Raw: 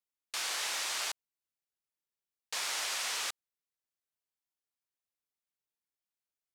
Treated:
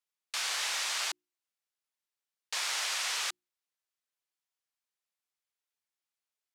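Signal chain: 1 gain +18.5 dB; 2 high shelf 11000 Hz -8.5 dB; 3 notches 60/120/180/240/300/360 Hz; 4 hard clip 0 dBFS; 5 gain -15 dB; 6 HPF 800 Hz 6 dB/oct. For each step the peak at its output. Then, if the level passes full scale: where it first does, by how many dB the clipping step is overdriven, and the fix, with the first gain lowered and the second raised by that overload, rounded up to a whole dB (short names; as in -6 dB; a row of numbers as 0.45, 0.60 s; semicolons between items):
-4.5, -5.5, -5.5, -5.5, -20.5, -21.0 dBFS; no overload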